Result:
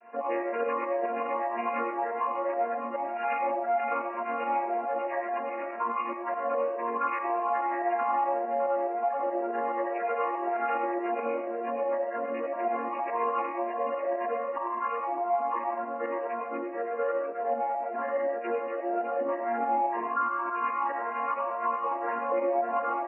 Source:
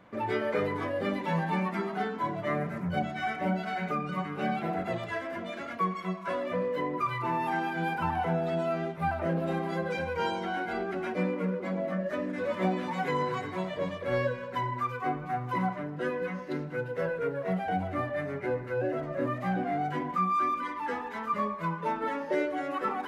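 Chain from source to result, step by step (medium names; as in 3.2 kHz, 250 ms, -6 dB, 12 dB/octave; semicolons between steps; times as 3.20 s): vocoder on a held chord minor triad, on A#3; resonant low shelf 390 Hz -13.5 dB, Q 1.5; spectral gate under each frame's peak -25 dB strong; reverse; upward compressor, threshold -36 dBFS; reverse; peak limiter -26 dBFS, peak gain reduction 8.5 dB; in parallel at -7 dB: saturation -39 dBFS, distortion -8 dB; on the sum: bit crusher 10-bit; volume shaper 142 bpm, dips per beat 2, -11 dB, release 90 ms; brick-wall FIR band-pass 190–2900 Hz; delay 607 ms -12.5 dB; reverberation RT60 0.50 s, pre-delay 60 ms, DRR 4.5 dB; endless flanger 2.6 ms +1.9 Hz; trim +6.5 dB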